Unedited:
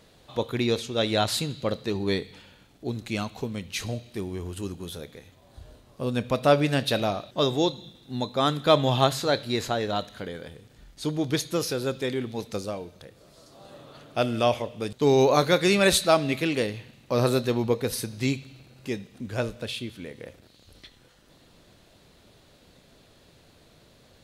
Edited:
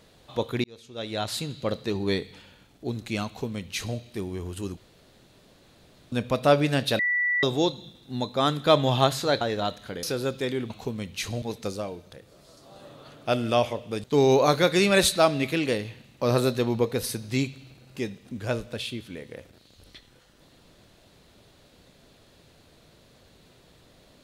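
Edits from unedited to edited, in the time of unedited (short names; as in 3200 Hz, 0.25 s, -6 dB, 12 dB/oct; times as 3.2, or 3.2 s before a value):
0.64–1.76 fade in
3.26–3.98 copy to 12.31
4.77–6.12 room tone
6.99–7.43 bleep 1960 Hz -21.5 dBFS
9.41–9.72 cut
10.34–11.64 cut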